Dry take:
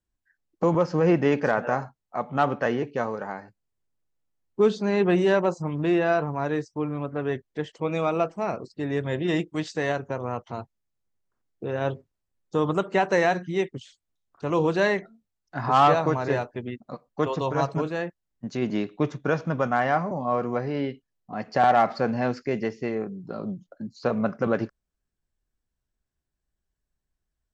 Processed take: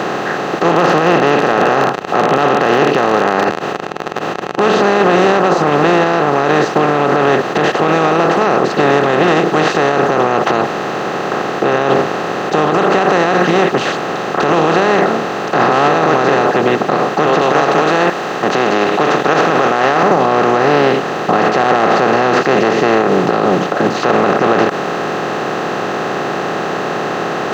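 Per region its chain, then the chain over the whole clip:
0.69–4.80 s: peaking EQ 2.8 kHz +9.5 dB 0.59 oct + crackle 35 per s -32 dBFS + band-stop 2.2 kHz, Q 8.6
17.41–20.03 s: high-pass 510 Hz 6 dB/octave + tilt EQ +2.5 dB/octave
whole clip: spectral levelling over time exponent 0.2; high-pass 130 Hz; loudness maximiser +7.5 dB; trim -1 dB

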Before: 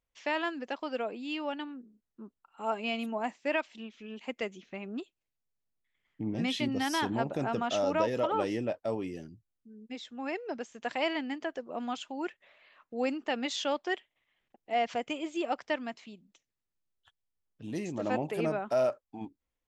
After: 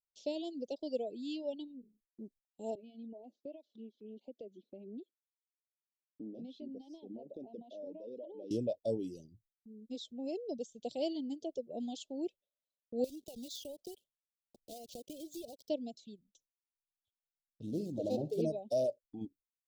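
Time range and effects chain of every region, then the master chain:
2.75–8.51 s: high-pass 220 Hz 24 dB/octave + compression 3:1, threshold -41 dBFS + tape spacing loss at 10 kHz 37 dB
13.04–15.70 s: block-companded coder 3-bit + compression 4:1, threshold -41 dBFS
17.66–18.42 s: median filter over 15 samples + flutter echo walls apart 10.2 m, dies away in 0.4 s
whole clip: Chebyshev band-stop 580–3700 Hz, order 3; gate with hold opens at -56 dBFS; reverb removal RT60 0.96 s

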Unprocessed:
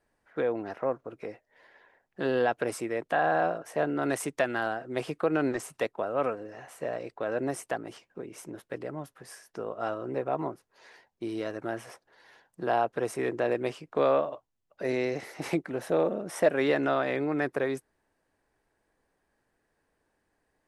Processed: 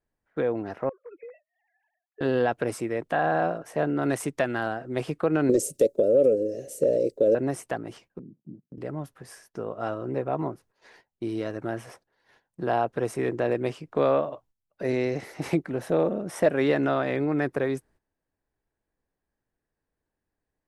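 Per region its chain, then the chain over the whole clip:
0.89–2.21 s: formants replaced by sine waves + compression 16:1, threshold -40 dBFS
5.49–7.35 s: FFT filter 130 Hz 0 dB, 560 Hz +15 dB, 850 Hz -28 dB, 6.7 kHz +12 dB + compression 3:1, threshold -18 dBFS
8.19–8.78 s: dead-time distortion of 0.17 ms + Butterworth band-pass 190 Hz, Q 1.6
whole clip: bass shelf 240 Hz +10 dB; gate -55 dBFS, range -13 dB

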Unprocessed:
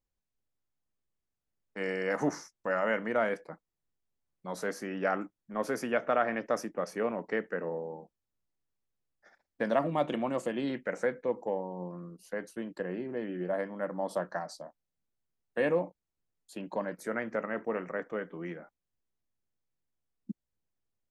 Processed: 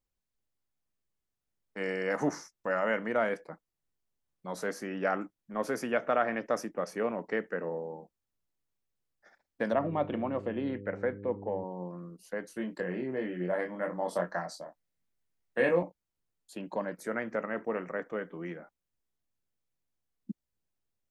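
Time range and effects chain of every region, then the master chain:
9.72–11.63 s: mains buzz 100 Hz, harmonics 5, -44 dBFS -1 dB/octave + distance through air 380 m
12.48–15.83 s: peaking EQ 2 kHz +4.5 dB 0.46 oct + doubling 23 ms -4 dB
whole clip: none

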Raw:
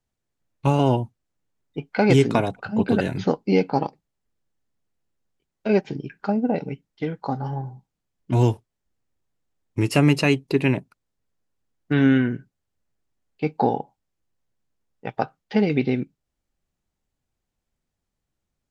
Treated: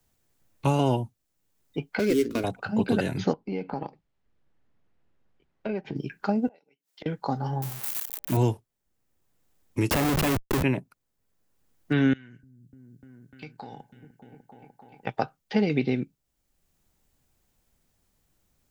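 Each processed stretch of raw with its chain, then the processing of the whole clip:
1.99–2.44 s: median filter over 15 samples + expander -21 dBFS + static phaser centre 340 Hz, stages 4
3.33–5.96 s: low-pass 2.5 kHz + compression 3:1, threshold -30 dBFS
6.47–7.06 s: high-pass 480 Hz + inverted gate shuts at -32 dBFS, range -28 dB
7.62–8.37 s: zero-crossing glitches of -19.5 dBFS + de-hum 116.9 Hz, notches 7
9.90–10.63 s: hum notches 50/100/150/200 Hz + Schmitt trigger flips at -27 dBFS
12.13–15.07 s: amplifier tone stack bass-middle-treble 5-5-5 + compression 4:1, threshold -42 dBFS + delay with an opening low-pass 299 ms, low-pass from 200 Hz, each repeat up 1 oct, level -6 dB
whole clip: treble shelf 9.7 kHz +11.5 dB; three bands compressed up and down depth 40%; trim -3 dB

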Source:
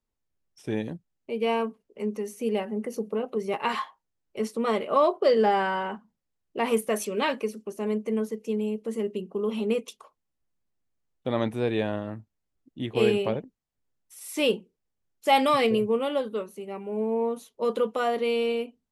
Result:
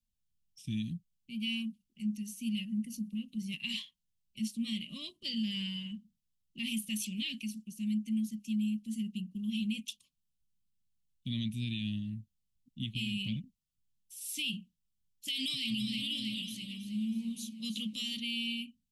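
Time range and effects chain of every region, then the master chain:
15.28–18.20 s: peaking EQ 5.6 kHz +9 dB 1.8 oct + echo whose repeats swap between lows and highs 161 ms, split 1.2 kHz, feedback 71%, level -7 dB
whole clip: elliptic band-stop 210–2900 Hz, stop band 40 dB; dynamic bell 2.9 kHz, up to +5 dB, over -49 dBFS, Q 1.4; peak limiter -26.5 dBFS

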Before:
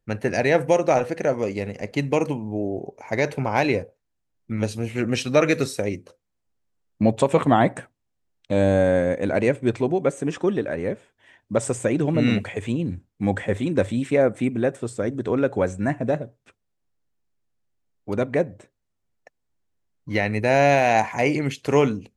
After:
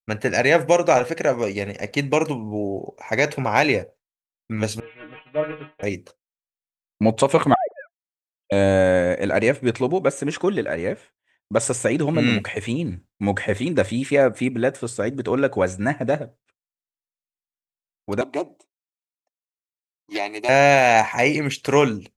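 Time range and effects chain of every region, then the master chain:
4.80–5.83 s: CVSD coder 16 kbps + bass shelf 160 Hz -11.5 dB + inharmonic resonator 150 Hz, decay 0.24 s, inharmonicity 0.002
7.54–8.52 s: formants replaced by sine waves + low-pass that closes with the level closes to 410 Hz, closed at -18 dBFS
18.21–20.49 s: high-pass 260 Hz 24 dB/octave + static phaser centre 330 Hz, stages 8 + loudspeaker Doppler distortion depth 0.11 ms
whole clip: expander -40 dBFS; tilt shelf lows -3.5 dB, about 760 Hz; trim +3 dB

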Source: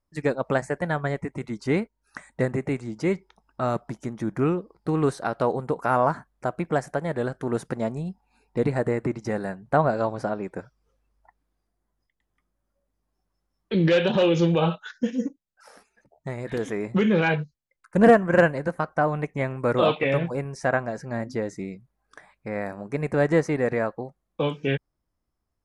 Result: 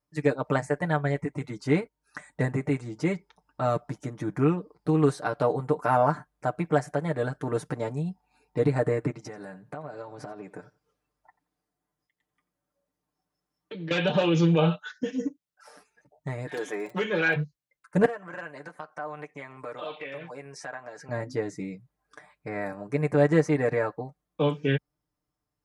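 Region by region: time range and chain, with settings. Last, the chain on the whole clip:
9.10–13.91 s: high-pass 140 Hz 6 dB/octave + compression 10:1, threshold -33 dBFS + feedback delay 88 ms, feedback 18%, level -19.5 dB
16.48–17.35 s: high-pass 370 Hz + comb 5.5 ms, depth 40% + crackle 18 per s -34 dBFS
18.05–21.09 s: frequency weighting A + compression 2.5:1, threshold -38 dBFS
whole clip: high-pass 54 Hz; comb 6.7 ms, depth 74%; trim -3 dB

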